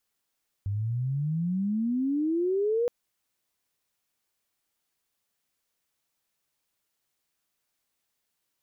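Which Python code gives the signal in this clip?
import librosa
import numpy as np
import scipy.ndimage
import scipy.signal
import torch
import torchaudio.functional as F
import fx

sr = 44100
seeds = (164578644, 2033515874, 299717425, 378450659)

y = fx.chirp(sr, length_s=2.22, from_hz=97.0, to_hz=490.0, law='logarithmic', from_db=-26.5, to_db=-22.5)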